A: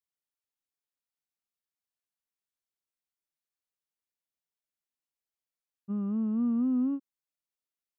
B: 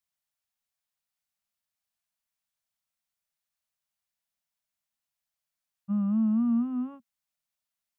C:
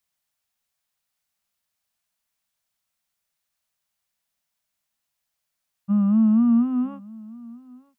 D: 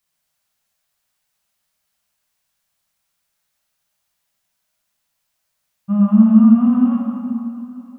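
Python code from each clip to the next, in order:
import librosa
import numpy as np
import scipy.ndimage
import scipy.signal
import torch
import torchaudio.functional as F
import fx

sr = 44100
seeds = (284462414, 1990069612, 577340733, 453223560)

y1 = scipy.signal.sosfilt(scipy.signal.ellip(3, 1.0, 40, [230.0, 590.0], 'bandstop', fs=sr, output='sos'), x)
y1 = F.gain(torch.from_numpy(y1), 5.0).numpy()
y2 = y1 + 10.0 ** (-22.5 / 20.0) * np.pad(y1, (int(943 * sr / 1000.0), 0))[:len(y1)]
y2 = F.gain(torch.from_numpy(y2), 7.5).numpy()
y3 = fx.rev_plate(y2, sr, seeds[0], rt60_s=2.4, hf_ratio=0.75, predelay_ms=0, drr_db=-2.5)
y3 = F.gain(torch.from_numpy(y3), 3.5).numpy()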